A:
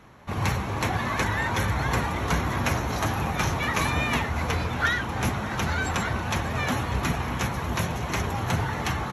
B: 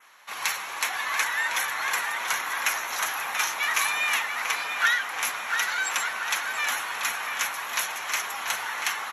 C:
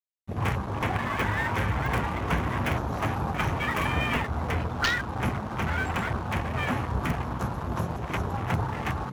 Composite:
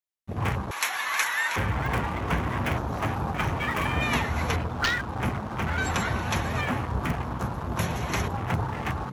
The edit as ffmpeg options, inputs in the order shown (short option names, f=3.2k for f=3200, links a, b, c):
-filter_complex "[0:a]asplit=3[a][b][c];[2:a]asplit=5[d][e][f][g][h];[d]atrim=end=0.712[i];[1:a]atrim=start=0.708:end=1.562[j];[e]atrim=start=1.558:end=4.022[k];[a]atrim=start=4.018:end=4.562[l];[f]atrim=start=4.558:end=5.782[m];[b]atrim=start=5.778:end=6.612[n];[g]atrim=start=6.608:end=7.792[o];[c]atrim=start=7.788:end=8.282[p];[h]atrim=start=8.278[q];[i][j]acrossfade=d=0.004:c1=hsin:c2=hsin[r];[r][k]acrossfade=d=0.004:c1=hsin:c2=hsin[s];[s][l]acrossfade=d=0.004:c1=hsin:c2=hsin[t];[t][m]acrossfade=d=0.004:c1=hsin:c2=hsin[u];[u][n]acrossfade=d=0.004:c1=hsin:c2=hsin[v];[v][o]acrossfade=d=0.004:c1=hsin:c2=hsin[w];[w][p]acrossfade=d=0.004:c1=hsin:c2=hsin[x];[x][q]acrossfade=d=0.004:c1=hsin:c2=hsin"